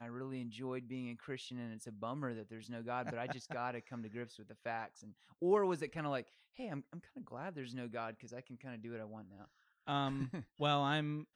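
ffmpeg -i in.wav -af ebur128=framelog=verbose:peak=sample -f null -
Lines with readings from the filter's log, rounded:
Integrated loudness:
  I:         -41.2 LUFS
  Threshold: -51.6 LUFS
Loudness range:
  LRA:         7.7 LU
  Threshold: -62.3 LUFS
  LRA low:   -47.7 LUFS
  LRA high:  -40.0 LUFS
Sample peak:
  Peak:      -20.5 dBFS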